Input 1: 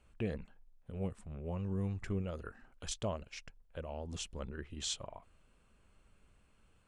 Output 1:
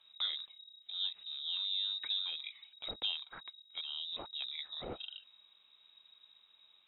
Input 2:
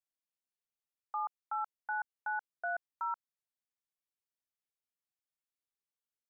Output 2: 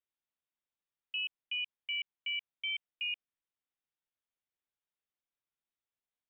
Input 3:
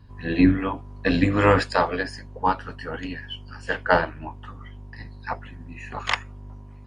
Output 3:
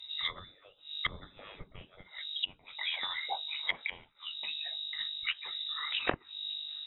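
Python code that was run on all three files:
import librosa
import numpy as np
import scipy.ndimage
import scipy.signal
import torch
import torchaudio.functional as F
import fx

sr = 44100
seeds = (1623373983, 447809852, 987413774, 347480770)

y = fx.freq_invert(x, sr, carrier_hz=3800)
y = fx.env_lowpass_down(y, sr, base_hz=350.0, full_db=-21.0)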